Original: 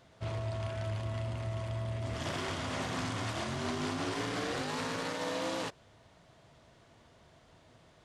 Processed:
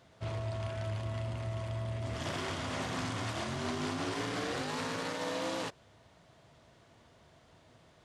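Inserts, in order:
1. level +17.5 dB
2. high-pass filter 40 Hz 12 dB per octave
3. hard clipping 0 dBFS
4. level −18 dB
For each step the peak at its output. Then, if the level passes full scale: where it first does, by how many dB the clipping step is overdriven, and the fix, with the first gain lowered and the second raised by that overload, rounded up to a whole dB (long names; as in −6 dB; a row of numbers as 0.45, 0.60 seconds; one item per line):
−5.0, −5.0, −5.0, −23.0 dBFS
no step passes full scale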